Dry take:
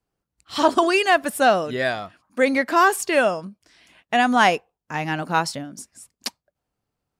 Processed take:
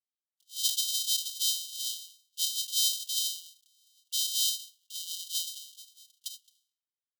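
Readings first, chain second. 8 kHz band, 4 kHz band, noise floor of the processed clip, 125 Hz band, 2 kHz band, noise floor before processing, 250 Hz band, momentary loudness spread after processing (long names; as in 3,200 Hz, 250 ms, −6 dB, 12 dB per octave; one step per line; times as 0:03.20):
+4.0 dB, +1.0 dB, below −85 dBFS, below −40 dB, below −40 dB, −85 dBFS, below −40 dB, 16 LU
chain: samples sorted by size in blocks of 128 samples
noise reduction from a noise print of the clip's start 11 dB
linear-phase brick-wall high-pass 2,800 Hz
comb filter 4.8 ms, depth 64%
level that may fall only so fast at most 120 dB per second
level −4 dB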